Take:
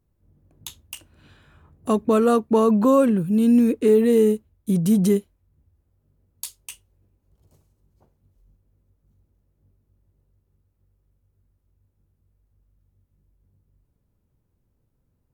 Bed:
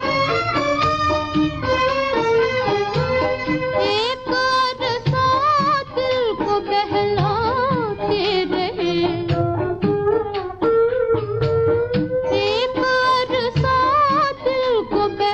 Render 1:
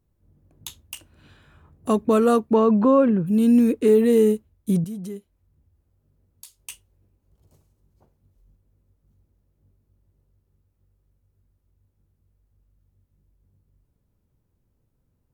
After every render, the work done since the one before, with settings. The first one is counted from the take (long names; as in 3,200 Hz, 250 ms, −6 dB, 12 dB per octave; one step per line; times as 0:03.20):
0:02.53–0:03.26: low-pass filter 3,700 Hz → 1,900 Hz
0:04.84–0:06.60: downward compressor 1.5 to 1, threshold −59 dBFS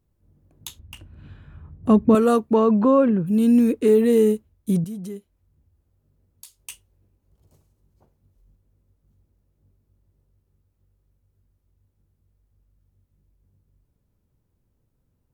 0:00.79–0:02.15: bass and treble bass +12 dB, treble −13 dB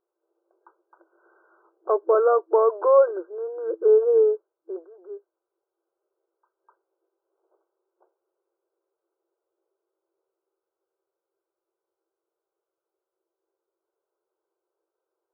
brick-wall band-pass 330–1,600 Hz
dynamic equaliser 580 Hz, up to +5 dB, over −38 dBFS, Q 5.9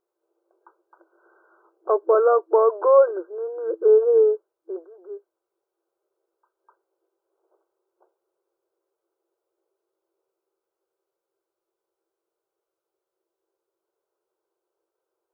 level +1.5 dB